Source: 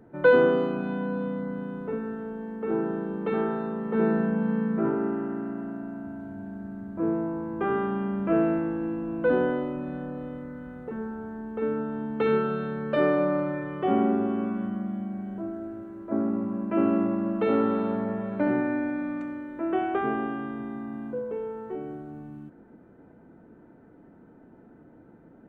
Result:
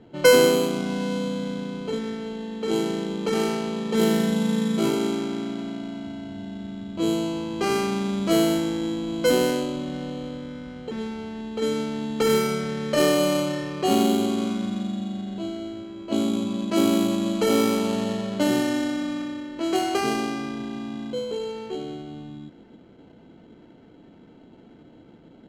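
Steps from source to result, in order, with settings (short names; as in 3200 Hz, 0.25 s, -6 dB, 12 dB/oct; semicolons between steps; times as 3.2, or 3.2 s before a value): sample-rate reducer 3600 Hz, jitter 0%; low-pass opened by the level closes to 2800 Hz, open at -19.5 dBFS; gain +3 dB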